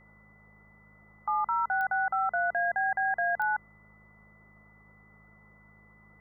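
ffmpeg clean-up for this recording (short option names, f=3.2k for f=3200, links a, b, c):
-af "adeclick=t=4,bandreject=f=52.5:t=h:w=4,bandreject=f=105:t=h:w=4,bandreject=f=157.5:t=h:w=4,bandreject=f=210:t=h:w=4,bandreject=f=2k:w=30,afwtdn=0.002"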